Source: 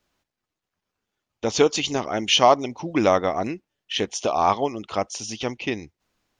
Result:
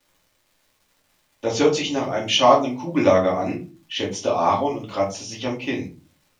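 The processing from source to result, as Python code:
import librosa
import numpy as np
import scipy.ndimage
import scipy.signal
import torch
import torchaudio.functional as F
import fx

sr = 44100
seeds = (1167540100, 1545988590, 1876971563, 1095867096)

y = scipy.signal.sosfilt(scipy.signal.butter(2, 83.0, 'highpass', fs=sr, output='sos'), x)
y = fx.high_shelf(y, sr, hz=5600.0, db=-4.5)
y = fx.dmg_crackle(y, sr, seeds[0], per_s=310.0, level_db=-48.0)
y = fx.room_shoebox(y, sr, seeds[1], volume_m3=150.0, walls='furnished', distance_m=2.5)
y = y * librosa.db_to_amplitude(-4.5)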